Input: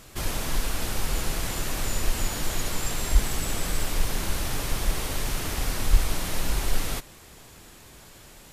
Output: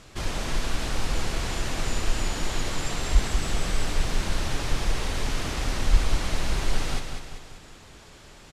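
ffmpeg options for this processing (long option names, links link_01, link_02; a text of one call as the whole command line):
ffmpeg -i in.wav -filter_complex "[0:a]lowpass=6500,asplit=2[link_01][link_02];[link_02]aecho=0:1:194|388|582|776|970|1164:0.473|0.237|0.118|0.0591|0.0296|0.0148[link_03];[link_01][link_03]amix=inputs=2:normalize=0" out.wav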